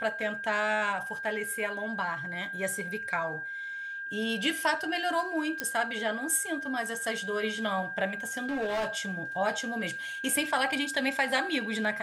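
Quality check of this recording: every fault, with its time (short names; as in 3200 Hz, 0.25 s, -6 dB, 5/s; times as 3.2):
tone 1600 Hz -35 dBFS
5.6 pop -14 dBFS
8.27–8.88 clipped -27 dBFS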